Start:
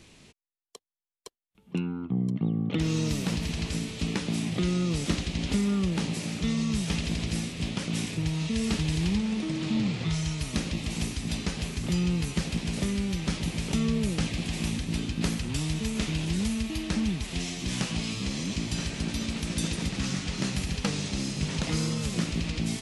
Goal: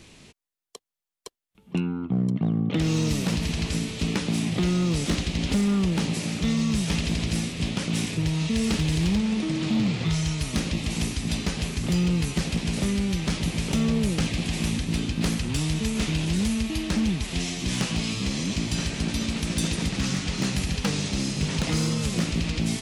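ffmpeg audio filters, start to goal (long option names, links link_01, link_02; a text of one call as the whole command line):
ffmpeg -i in.wav -af "asoftclip=type=hard:threshold=-22dB,volume=4dB" out.wav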